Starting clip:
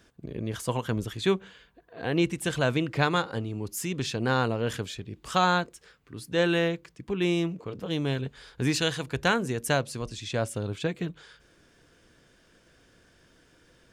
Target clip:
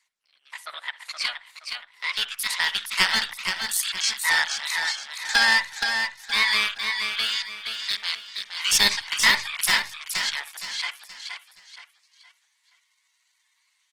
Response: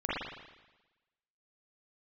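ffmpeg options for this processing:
-filter_complex "[0:a]highpass=f=1300:w=0.5412,highpass=f=1300:w=1.3066,afwtdn=0.00708,lowpass=f=8900:w=0.5412,lowpass=f=8900:w=1.3066,highshelf=f=2000:g=7,aeval=exprs='clip(val(0),-1,0.0891)':c=same,asetrate=55563,aresample=44100,atempo=0.793701,aphaser=in_gain=1:out_gain=1:delay=1.2:decay=0.3:speed=0.28:type=triangular,asplit=2[s0][s1];[s1]asetrate=22050,aresample=44100,atempo=2,volume=0.316[s2];[s0][s2]amix=inputs=2:normalize=0,aecho=1:1:471|942|1413|1884:0.501|0.175|0.0614|0.0215,asplit=2[s3][s4];[1:a]atrim=start_sample=2205,atrim=end_sample=3969[s5];[s4][s5]afir=irnorm=-1:irlink=0,volume=0.1[s6];[s3][s6]amix=inputs=2:normalize=0,volume=1.88" -ar 48000 -c:a libopus -b:a 16k

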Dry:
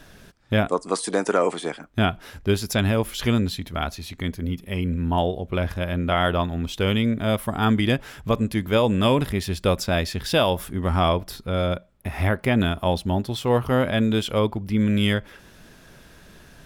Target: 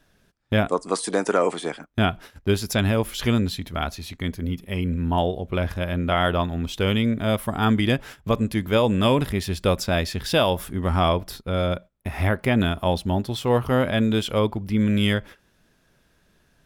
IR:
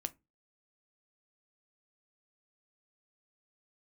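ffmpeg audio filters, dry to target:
-af "agate=range=0.2:threshold=0.0126:ratio=16:detection=peak"

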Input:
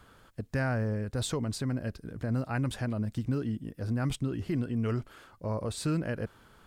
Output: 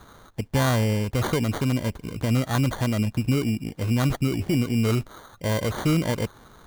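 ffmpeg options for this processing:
-af "acrusher=samples=17:mix=1:aa=0.000001,volume=2.51"

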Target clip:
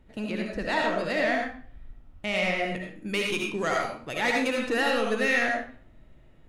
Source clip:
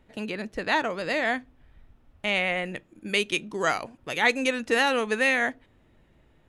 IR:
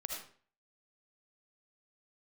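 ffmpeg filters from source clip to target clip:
-filter_complex "[0:a]lowshelf=f=310:g=7,asoftclip=type=tanh:threshold=0.15[s0];[1:a]atrim=start_sample=2205[s1];[s0][s1]afir=irnorm=-1:irlink=0"

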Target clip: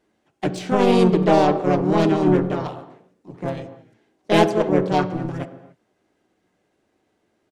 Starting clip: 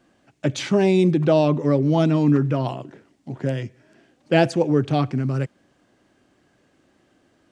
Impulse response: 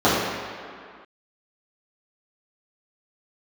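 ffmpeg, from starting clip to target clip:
-filter_complex "[0:a]aeval=exprs='0.562*(cos(1*acos(clip(val(0)/0.562,-1,1)))-cos(1*PI/2))+0.0282*(cos(4*acos(clip(val(0)/0.562,-1,1)))-cos(4*PI/2))+0.0501*(cos(7*acos(clip(val(0)/0.562,-1,1)))-cos(7*PI/2))':c=same,asplit=3[s0][s1][s2];[s1]asetrate=33038,aresample=44100,atempo=1.33484,volume=0.178[s3];[s2]asetrate=55563,aresample=44100,atempo=0.793701,volume=0.891[s4];[s0][s3][s4]amix=inputs=3:normalize=0,asplit=2[s5][s6];[1:a]atrim=start_sample=2205,afade=t=out:st=0.35:d=0.01,atrim=end_sample=15876[s7];[s6][s7]afir=irnorm=-1:irlink=0,volume=0.0251[s8];[s5][s8]amix=inputs=2:normalize=0,volume=0.75"

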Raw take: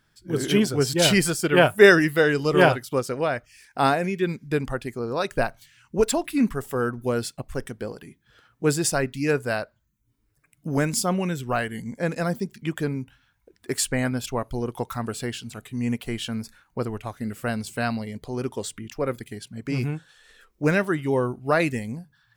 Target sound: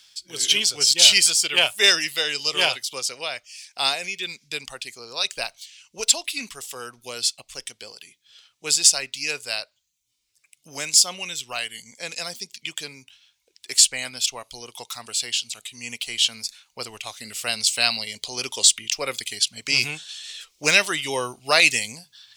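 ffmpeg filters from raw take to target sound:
-filter_complex "[0:a]acrossover=split=1600[s0][s1];[s1]asoftclip=type=hard:threshold=0.178[s2];[s0][s2]amix=inputs=2:normalize=0,aexciter=amount=9.5:drive=5.3:freq=2400,dynaudnorm=f=300:g=21:m=3.76,acrossover=split=550 7700:gain=0.178 1 0.141[s3][s4][s5];[s3][s4][s5]amix=inputs=3:normalize=0,alimiter=level_in=1.68:limit=0.891:release=50:level=0:latency=1,volume=0.891"

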